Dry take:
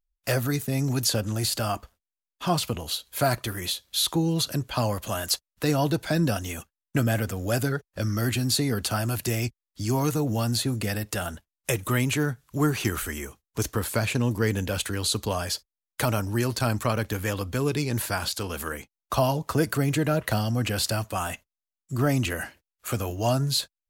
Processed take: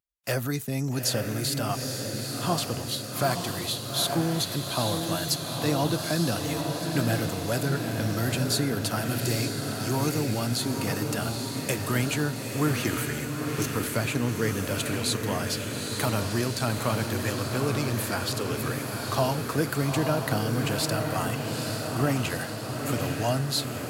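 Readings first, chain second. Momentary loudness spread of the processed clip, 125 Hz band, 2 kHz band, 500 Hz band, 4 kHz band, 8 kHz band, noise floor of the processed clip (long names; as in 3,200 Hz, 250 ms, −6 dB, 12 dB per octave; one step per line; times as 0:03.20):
4 LU, −1.5 dB, 0.0 dB, −0.5 dB, −0.5 dB, 0.0 dB, −34 dBFS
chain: high-pass filter 96 Hz
feedback delay with all-pass diffusion 873 ms, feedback 67%, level −4 dB
level −2.5 dB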